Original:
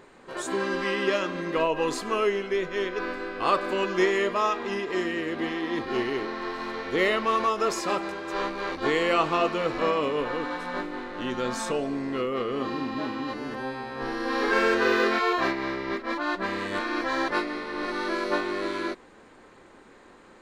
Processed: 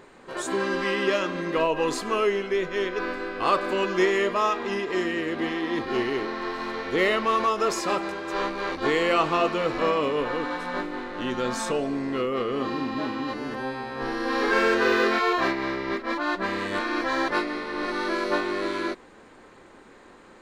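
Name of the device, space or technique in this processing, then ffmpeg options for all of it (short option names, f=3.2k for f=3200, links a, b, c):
parallel distortion: -filter_complex "[0:a]asplit=2[a][b];[b]asoftclip=type=hard:threshold=-24dB,volume=-12.5dB[c];[a][c]amix=inputs=2:normalize=0"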